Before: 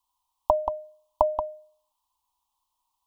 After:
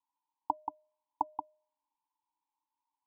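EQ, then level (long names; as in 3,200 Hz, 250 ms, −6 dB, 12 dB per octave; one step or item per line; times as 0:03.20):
formant filter u
+2.0 dB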